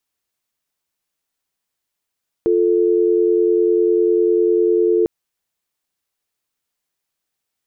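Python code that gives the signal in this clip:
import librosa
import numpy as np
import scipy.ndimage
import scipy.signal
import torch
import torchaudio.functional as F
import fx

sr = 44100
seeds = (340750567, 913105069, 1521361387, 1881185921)

y = fx.call_progress(sr, length_s=2.6, kind='dial tone', level_db=-15.0)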